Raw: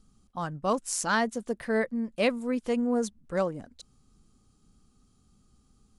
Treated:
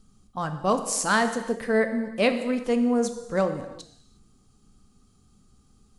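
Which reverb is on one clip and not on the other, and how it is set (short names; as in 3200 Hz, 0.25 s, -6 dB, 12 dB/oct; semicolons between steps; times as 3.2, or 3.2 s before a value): non-linear reverb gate 0.39 s falling, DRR 7 dB; gain +3.5 dB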